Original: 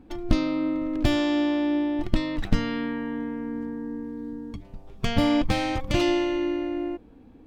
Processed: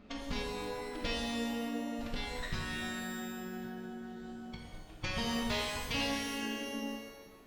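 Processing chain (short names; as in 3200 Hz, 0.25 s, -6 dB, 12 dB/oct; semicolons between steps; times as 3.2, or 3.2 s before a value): LPF 6400 Hz 24 dB/oct; reverb removal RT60 1.3 s; tilt shelf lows -6.5 dB, about 880 Hz; compressor 2:1, threshold -40 dBFS, peak gain reduction 11.5 dB; formant-preserving pitch shift -4 st; shimmer reverb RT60 1.3 s, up +12 st, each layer -8 dB, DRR -1.5 dB; gain -1.5 dB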